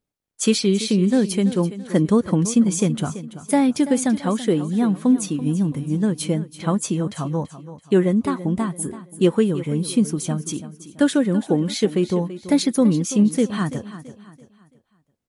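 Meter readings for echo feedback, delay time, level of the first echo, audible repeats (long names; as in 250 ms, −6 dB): 37%, 334 ms, −14.0 dB, 3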